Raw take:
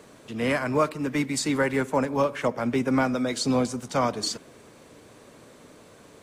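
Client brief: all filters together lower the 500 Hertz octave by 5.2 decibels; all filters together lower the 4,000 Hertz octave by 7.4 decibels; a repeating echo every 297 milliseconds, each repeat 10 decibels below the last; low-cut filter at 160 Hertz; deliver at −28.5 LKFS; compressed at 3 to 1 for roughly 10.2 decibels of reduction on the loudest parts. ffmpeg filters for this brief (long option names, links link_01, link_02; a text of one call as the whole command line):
ffmpeg -i in.wav -af "highpass=160,equalizer=frequency=500:width_type=o:gain=-6,equalizer=frequency=4000:width_type=o:gain=-9,acompressor=threshold=-36dB:ratio=3,aecho=1:1:297|594|891|1188:0.316|0.101|0.0324|0.0104,volume=8.5dB" out.wav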